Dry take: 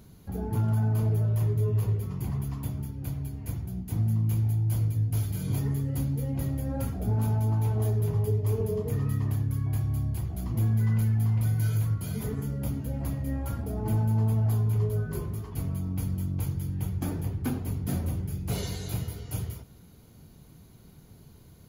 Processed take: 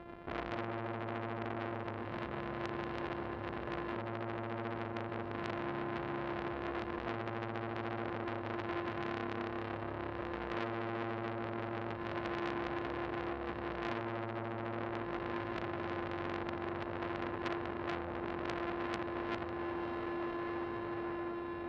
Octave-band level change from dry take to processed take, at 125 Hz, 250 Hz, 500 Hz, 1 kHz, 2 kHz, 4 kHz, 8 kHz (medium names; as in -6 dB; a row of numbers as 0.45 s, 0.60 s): -21.5 dB, -5.5 dB, -1.5 dB, +5.5 dB, +8.0 dB, no reading, under -25 dB